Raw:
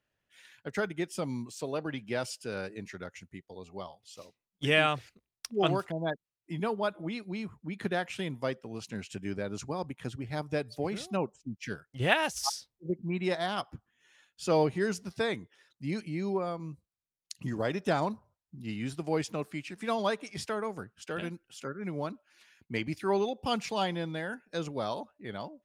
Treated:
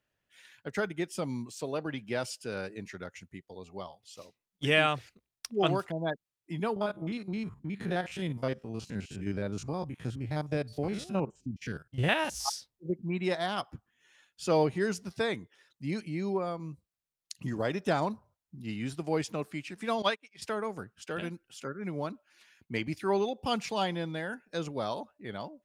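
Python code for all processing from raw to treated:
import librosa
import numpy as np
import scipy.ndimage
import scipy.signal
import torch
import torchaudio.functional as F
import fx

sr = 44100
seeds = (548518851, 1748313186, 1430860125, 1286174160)

y = fx.chain(x, sr, fx.spec_steps(hold_ms=50),
    fx.low_shelf(hz=160.0, db=8.0), at=(6.76, 12.48))
y = fx.chain(y, sr, fx.highpass(hz=160.0, slope=12),
    fx.peak_eq(hz=2600.0, db=11.0, octaves=1.6),
    fx.upward_expand(threshold_db=-46.0, expansion=2.5), at=(20.02, 20.42))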